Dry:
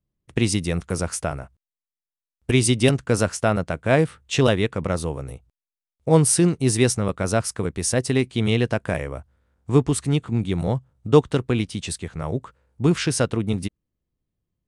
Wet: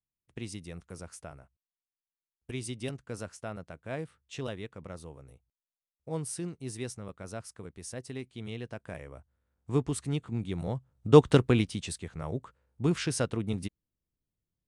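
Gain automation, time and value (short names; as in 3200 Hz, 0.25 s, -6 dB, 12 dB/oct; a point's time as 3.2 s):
8.62 s -19 dB
9.74 s -10.5 dB
10.75 s -10.5 dB
11.33 s +1 dB
11.93 s -8.5 dB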